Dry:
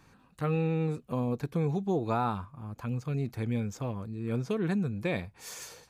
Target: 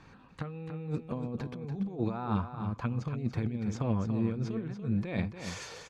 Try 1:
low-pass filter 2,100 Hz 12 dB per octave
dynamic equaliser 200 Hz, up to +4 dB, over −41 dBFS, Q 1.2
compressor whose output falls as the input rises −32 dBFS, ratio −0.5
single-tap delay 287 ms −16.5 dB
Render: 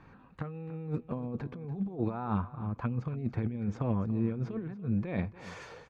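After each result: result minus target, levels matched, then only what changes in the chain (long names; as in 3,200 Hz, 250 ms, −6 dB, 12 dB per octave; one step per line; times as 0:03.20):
4,000 Hz band −9.0 dB; echo-to-direct −8 dB
change: low-pass filter 4,500 Hz 12 dB per octave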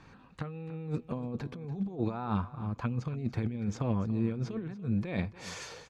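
echo-to-direct −8 dB
change: single-tap delay 287 ms −8.5 dB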